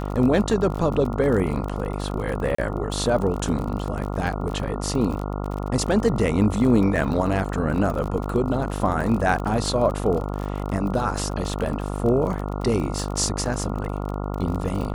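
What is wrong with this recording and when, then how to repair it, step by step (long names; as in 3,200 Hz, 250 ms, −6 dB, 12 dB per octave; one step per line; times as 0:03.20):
mains buzz 50 Hz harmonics 28 −28 dBFS
surface crackle 34 per second −28 dBFS
0:02.55–0:02.58: drop-out 34 ms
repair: click removal
hum removal 50 Hz, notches 28
repair the gap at 0:02.55, 34 ms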